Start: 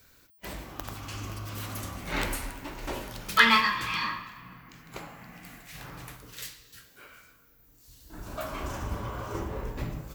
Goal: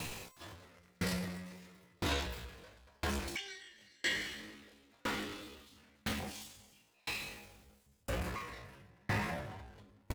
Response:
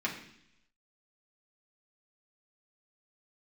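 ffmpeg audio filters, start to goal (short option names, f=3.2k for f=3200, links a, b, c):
-filter_complex "[0:a]aeval=exprs='val(0)+0.5*0.0224*sgn(val(0))':c=same,lowpass=f=3.5k:p=1,asetrate=76340,aresample=44100,atempo=0.577676,asplit=2[a][b];[b]adelay=29,volume=-9.5dB[c];[a][c]amix=inputs=2:normalize=0,acompressor=threshold=-30dB:ratio=8,aeval=exprs='val(0)*pow(10,-38*if(lt(mod(0.99*n/s,1),2*abs(0.99)/1000),1-mod(0.99*n/s,1)/(2*abs(0.99)/1000),(mod(0.99*n/s,1)-2*abs(0.99)/1000)/(1-2*abs(0.99)/1000))/20)':c=same,volume=3dB"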